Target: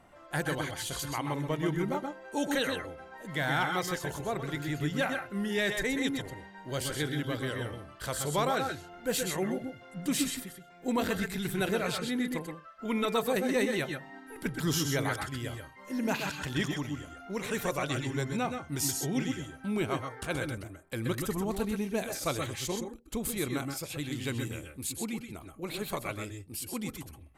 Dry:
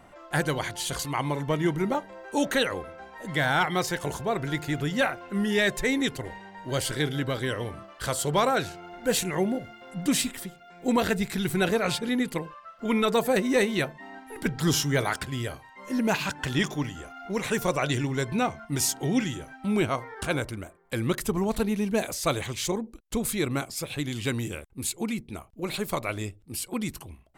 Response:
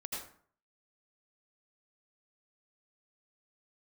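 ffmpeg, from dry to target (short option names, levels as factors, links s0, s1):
-filter_complex "[0:a]equalizer=f=14000:t=o:w=0.3:g=5.5[s0];[1:a]atrim=start_sample=2205,atrim=end_sample=3528,asetrate=26901,aresample=44100[s1];[s0][s1]afir=irnorm=-1:irlink=0,volume=0.668"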